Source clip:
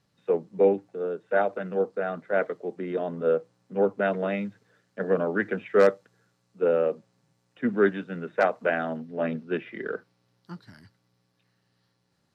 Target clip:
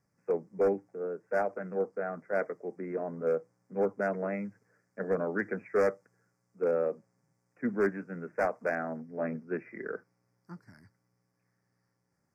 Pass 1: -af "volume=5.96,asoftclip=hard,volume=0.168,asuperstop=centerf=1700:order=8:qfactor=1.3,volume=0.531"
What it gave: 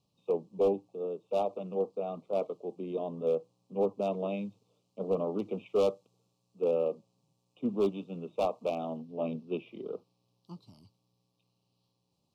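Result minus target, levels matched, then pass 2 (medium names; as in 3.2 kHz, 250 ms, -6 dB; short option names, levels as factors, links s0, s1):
2 kHz band -16.5 dB
-af "volume=5.96,asoftclip=hard,volume=0.168,asuperstop=centerf=3400:order=8:qfactor=1.3,volume=0.531"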